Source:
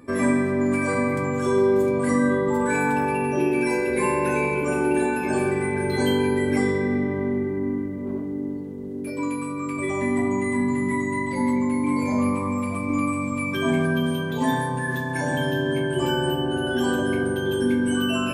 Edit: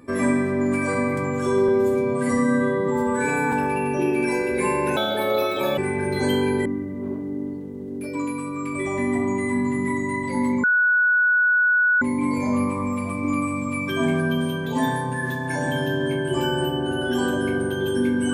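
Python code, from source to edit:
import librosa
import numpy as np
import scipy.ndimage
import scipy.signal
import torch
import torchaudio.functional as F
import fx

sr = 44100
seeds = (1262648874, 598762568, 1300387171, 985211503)

y = fx.edit(x, sr, fx.stretch_span(start_s=1.68, length_s=1.23, factor=1.5),
    fx.speed_span(start_s=4.35, length_s=1.2, speed=1.48),
    fx.cut(start_s=6.43, length_s=1.26),
    fx.insert_tone(at_s=11.67, length_s=1.38, hz=1470.0, db=-15.0), tone=tone)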